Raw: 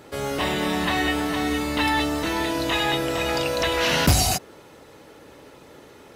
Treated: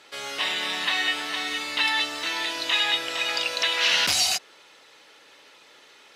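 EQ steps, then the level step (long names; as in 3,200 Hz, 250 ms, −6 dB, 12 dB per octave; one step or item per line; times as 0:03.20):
resonant band-pass 3,500 Hz, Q 0.93
+4.5 dB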